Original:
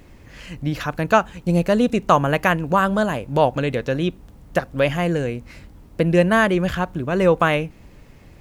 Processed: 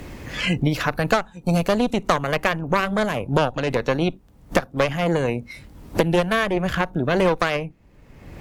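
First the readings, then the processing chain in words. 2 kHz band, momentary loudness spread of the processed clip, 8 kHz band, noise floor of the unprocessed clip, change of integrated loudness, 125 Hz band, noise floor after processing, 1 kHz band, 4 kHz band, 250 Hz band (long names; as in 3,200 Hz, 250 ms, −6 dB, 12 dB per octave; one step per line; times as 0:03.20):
−1.0 dB, 6 LU, +1.5 dB, −47 dBFS, −2.0 dB, −1.5 dB, −51 dBFS, −3.0 dB, +2.5 dB, −2.0 dB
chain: harmonic generator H 3 −22 dB, 6 −16 dB, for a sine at −1 dBFS
noise reduction from a noise print of the clip's start 15 dB
multiband upward and downward compressor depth 100%
level −1.5 dB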